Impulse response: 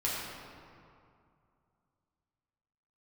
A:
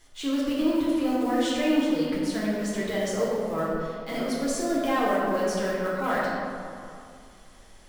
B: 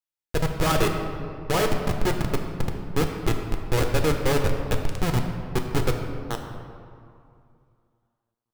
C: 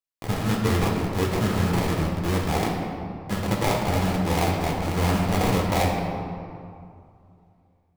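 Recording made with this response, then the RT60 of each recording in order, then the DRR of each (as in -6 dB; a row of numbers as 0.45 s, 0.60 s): A; 2.4 s, 2.4 s, 2.4 s; -7.5 dB, 3.0 dB, -1.5 dB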